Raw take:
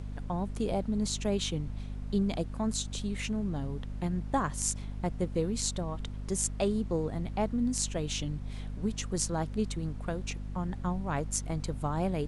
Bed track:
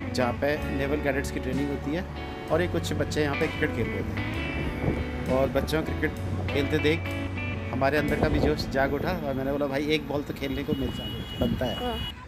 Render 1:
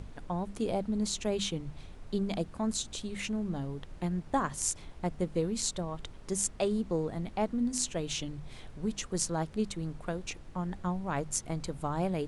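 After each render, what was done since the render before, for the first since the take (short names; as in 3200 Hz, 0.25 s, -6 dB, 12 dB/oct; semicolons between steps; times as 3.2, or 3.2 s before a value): notches 50/100/150/200/250 Hz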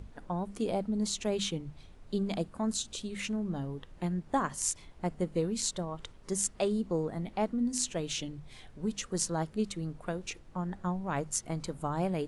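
noise print and reduce 6 dB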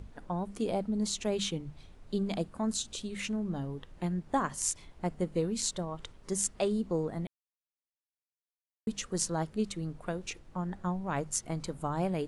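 7.27–8.87 mute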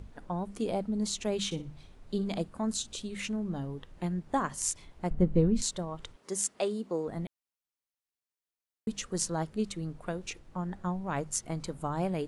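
1.45–2.43 flutter echo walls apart 10.3 m, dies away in 0.27 s; 5.1–5.62 RIAA curve playback; 6.16–7.08 HPF 260 Hz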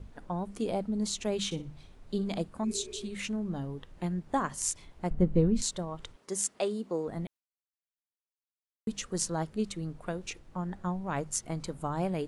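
gate with hold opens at -49 dBFS; 2.67–3.06 spectral repair 300–2600 Hz after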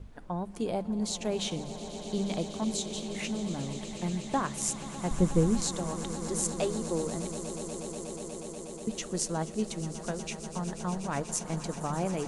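swelling echo 0.121 s, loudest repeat 8, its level -16 dB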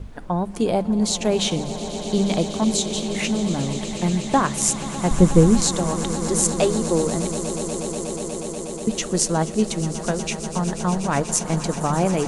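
gain +11 dB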